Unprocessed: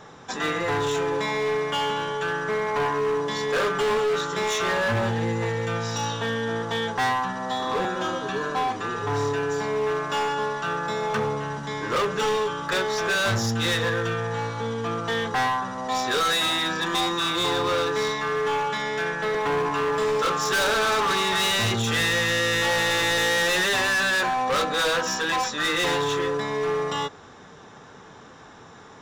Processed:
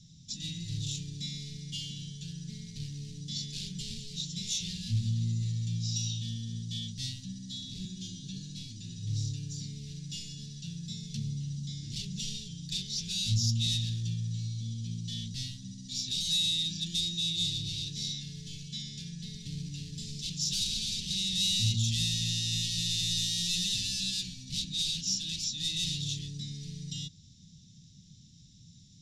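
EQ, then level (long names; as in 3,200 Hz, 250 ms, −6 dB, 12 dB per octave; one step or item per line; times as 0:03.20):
elliptic band-stop filter 170–4,300 Hz, stop band 60 dB
low-pass filter 8,100 Hz 12 dB per octave
dynamic equaliser 2,800 Hz, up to +6 dB, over −49 dBFS, Q 1.9
0.0 dB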